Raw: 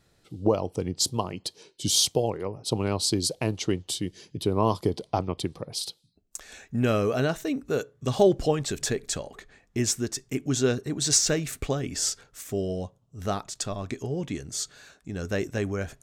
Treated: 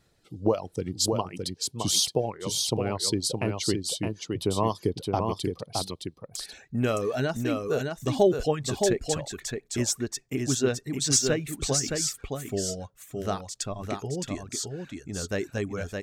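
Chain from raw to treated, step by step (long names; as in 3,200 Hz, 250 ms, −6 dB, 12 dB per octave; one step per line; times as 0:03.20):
reverb reduction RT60 0.88 s
single-tap delay 616 ms −4.5 dB
level −1 dB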